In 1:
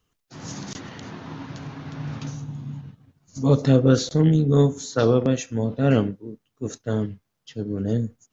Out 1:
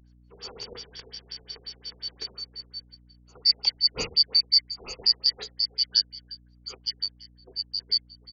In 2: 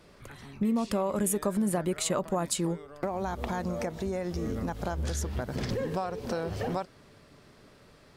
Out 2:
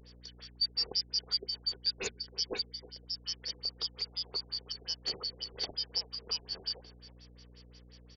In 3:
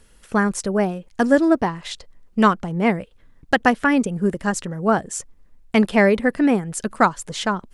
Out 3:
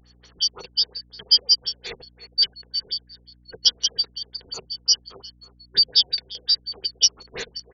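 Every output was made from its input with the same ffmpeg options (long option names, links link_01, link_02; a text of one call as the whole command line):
ffmpeg -i in.wav -filter_complex "[0:a]afftfilt=real='real(if(lt(b,272),68*(eq(floor(b/68),0)*3+eq(floor(b/68),1)*2+eq(floor(b/68),2)*1+eq(floor(b/68),3)*0)+mod(b,68),b),0)':imag='imag(if(lt(b,272),68*(eq(floor(b/68),0)*3+eq(floor(b/68),1)*2+eq(floor(b/68),2)*1+eq(floor(b/68),3)*0)+mod(b,68),b),0)':win_size=2048:overlap=0.75,bandreject=frequency=77.2:width_type=h:width=4,bandreject=frequency=154.4:width_type=h:width=4,bandreject=frequency=231.6:width_type=h:width=4,acrossover=split=320|1000|1900[link_01][link_02][link_03][link_04];[link_03]acompressor=threshold=-54dB:ratio=10[link_05];[link_01][link_02][link_05][link_04]amix=inputs=4:normalize=0,asplit=2[link_06][link_07];[link_07]adelay=320,highpass=300,lowpass=3400,asoftclip=type=hard:threshold=-10dB,volume=-15dB[link_08];[link_06][link_08]amix=inputs=2:normalize=0,aeval=exprs='val(0)+0.002*(sin(2*PI*60*n/s)+sin(2*PI*2*60*n/s)/2+sin(2*PI*3*60*n/s)/3+sin(2*PI*4*60*n/s)/4+sin(2*PI*5*60*n/s)/5)':channel_layout=same,superequalizer=7b=3.55:15b=0.398:16b=2.82,aexciter=amount=5.1:drive=5.8:freq=6900,adynamicequalizer=threshold=0.0178:dfrequency=3900:dqfactor=4.3:tfrequency=3900:tqfactor=4.3:attack=5:release=100:ratio=0.375:range=3:mode=boostabove:tftype=bell,afftfilt=real='re*lt(b*sr/1024,750*pow(7300/750,0.5+0.5*sin(2*PI*5.6*pts/sr)))':imag='im*lt(b*sr/1024,750*pow(7300/750,0.5+0.5*sin(2*PI*5.6*pts/sr)))':win_size=1024:overlap=0.75,volume=-1dB" out.wav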